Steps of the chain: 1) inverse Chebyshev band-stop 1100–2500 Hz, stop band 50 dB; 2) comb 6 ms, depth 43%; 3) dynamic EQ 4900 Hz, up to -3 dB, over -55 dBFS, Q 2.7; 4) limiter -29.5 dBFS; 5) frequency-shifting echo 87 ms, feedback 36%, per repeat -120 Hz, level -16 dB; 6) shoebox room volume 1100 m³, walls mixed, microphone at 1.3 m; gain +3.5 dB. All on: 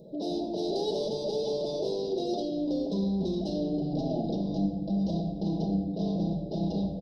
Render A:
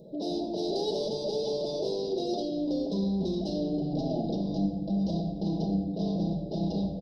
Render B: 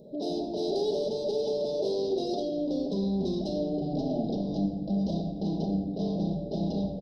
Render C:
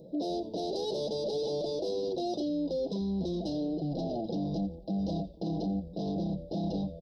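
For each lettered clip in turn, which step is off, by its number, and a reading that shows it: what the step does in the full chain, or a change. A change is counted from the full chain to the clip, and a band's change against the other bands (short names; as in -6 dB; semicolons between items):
3, 4 kHz band +1.5 dB; 2, 500 Hz band +2.0 dB; 6, crest factor change -3.5 dB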